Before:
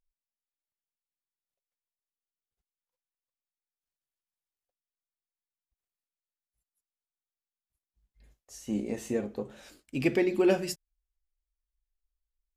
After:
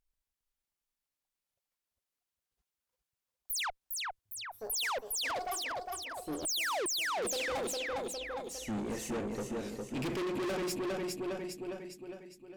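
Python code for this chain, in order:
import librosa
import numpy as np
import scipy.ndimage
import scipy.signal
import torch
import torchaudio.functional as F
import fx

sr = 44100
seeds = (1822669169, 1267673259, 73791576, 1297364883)

y = fx.spec_paint(x, sr, seeds[0], shape='fall', start_s=6.45, length_s=0.41, low_hz=320.0, high_hz=9800.0, level_db=-20.0)
y = fx.echo_pitch(y, sr, ms=136, semitones=6, count=2, db_per_echo=-6.0)
y = fx.echo_feedback(y, sr, ms=407, feedback_pct=48, wet_db=-6.5)
y = fx.tube_stage(y, sr, drive_db=37.0, bias=0.35)
y = F.gain(torch.from_numpy(y), 4.0).numpy()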